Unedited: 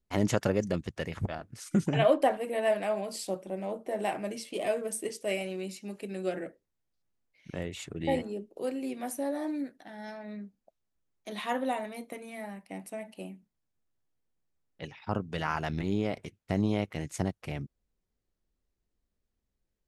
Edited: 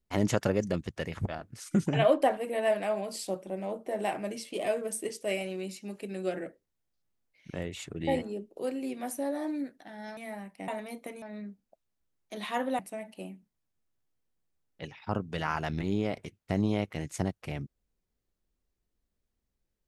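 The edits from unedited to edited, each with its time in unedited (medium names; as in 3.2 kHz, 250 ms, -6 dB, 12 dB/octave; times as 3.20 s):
10.17–11.74 s: swap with 12.28–12.79 s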